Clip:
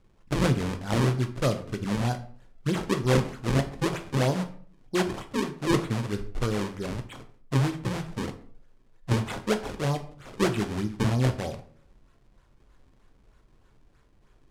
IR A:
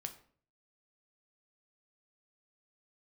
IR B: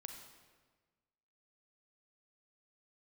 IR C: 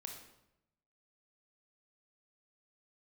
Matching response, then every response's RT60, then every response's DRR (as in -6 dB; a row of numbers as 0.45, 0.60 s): A; 0.50, 1.4, 0.85 s; 6.0, 4.0, 2.0 dB